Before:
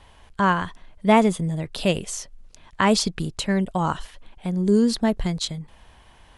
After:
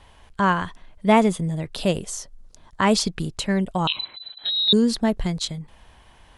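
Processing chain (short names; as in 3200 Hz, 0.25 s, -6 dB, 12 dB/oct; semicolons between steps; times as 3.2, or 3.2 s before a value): 1.82–2.81 bell 2500 Hz -4.5 dB -> -11.5 dB 0.86 oct; 3.87–4.73 inverted band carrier 4000 Hz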